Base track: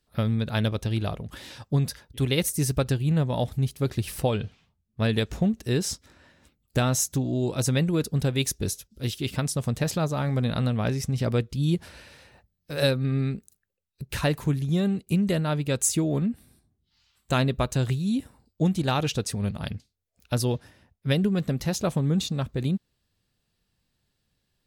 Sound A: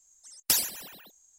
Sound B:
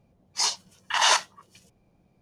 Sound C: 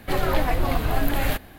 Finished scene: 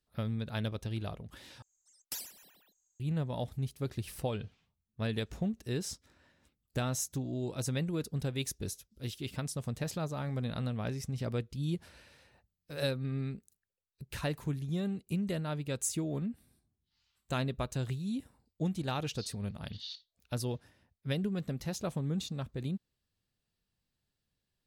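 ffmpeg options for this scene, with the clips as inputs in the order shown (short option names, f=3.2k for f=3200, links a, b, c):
-filter_complex "[0:a]volume=-10dB[a];[2:a]asuperpass=centerf=4000:order=4:qfactor=3.6[b];[a]asplit=2[c][d];[c]atrim=end=1.624[e];[1:a]atrim=end=1.38,asetpts=PTS-STARTPTS,volume=-16dB[f];[d]atrim=start=2.996[g];[b]atrim=end=2.21,asetpts=PTS-STARTPTS,volume=-15.5dB,afade=t=in:d=0.004:c=hsin,afade=t=out:st=2.206:d=0.004:c=hsin,adelay=18790[h];[e][f]acrossfade=d=0.004:c1=hsin:c2=hsin[i];[i][g]acrossfade=d=0.004:c1=hsin:c2=hsin[j];[j][h]amix=inputs=2:normalize=0"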